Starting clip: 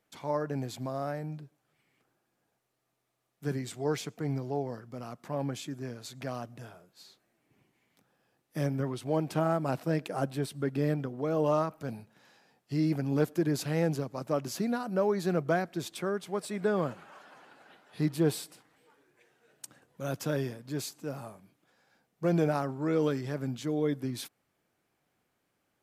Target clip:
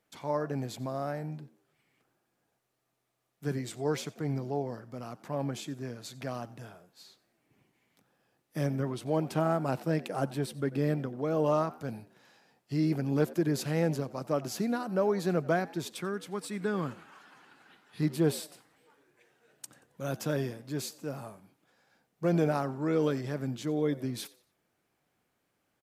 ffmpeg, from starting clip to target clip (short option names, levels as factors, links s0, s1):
-filter_complex "[0:a]asettb=1/sr,asplit=3[s0][s1][s2];[s0]atrim=end=16.004[s3];[s1]atrim=start=16:end=18.03,asetpts=PTS-STARTPTS,afade=t=in:d=0.004:c=qsin,afade=t=out:st=2.026:d=0.004:c=qsin,equalizer=f=600:t=o:w=0.8:g=-10.5[s4];[s2]atrim=start=18.026[s5];[s3][s4]acrossfade=d=0.004:c1=hsin:c2=qsin[s6];[s6][s5]acrossfade=d=0.004:c1=qsin:c2=hsin,asplit=4[s7][s8][s9][s10];[s8]adelay=90,afreqshift=81,volume=0.0944[s11];[s9]adelay=180,afreqshift=162,volume=0.032[s12];[s10]adelay=270,afreqshift=243,volume=0.011[s13];[s7][s11][s12][s13]amix=inputs=4:normalize=0"